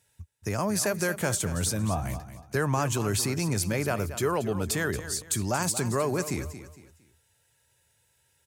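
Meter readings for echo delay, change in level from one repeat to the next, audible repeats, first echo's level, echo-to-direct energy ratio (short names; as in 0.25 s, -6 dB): 0.229 s, -9.5 dB, 3, -12.5 dB, -12.0 dB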